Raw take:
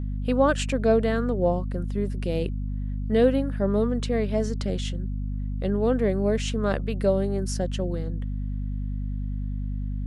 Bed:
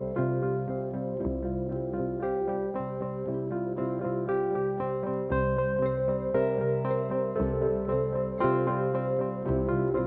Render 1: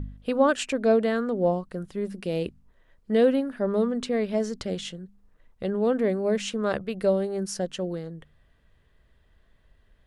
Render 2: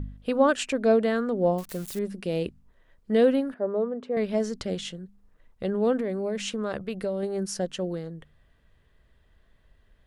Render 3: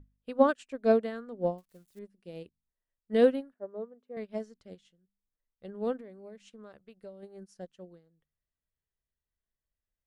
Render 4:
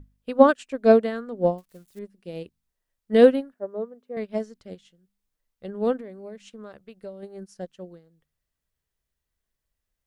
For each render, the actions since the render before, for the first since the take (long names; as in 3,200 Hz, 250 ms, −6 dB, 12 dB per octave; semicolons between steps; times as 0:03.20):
hum removal 50 Hz, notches 5
0:01.58–0:01.99: spike at every zero crossing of −29 dBFS; 0:03.54–0:04.17: resonant band-pass 560 Hz, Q 1.1; 0:06.00–0:07.23: downward compressor, threshold −25 dBFS
expander for the loud parts 2.5 to 1, over −37 dBFS
level +8 dB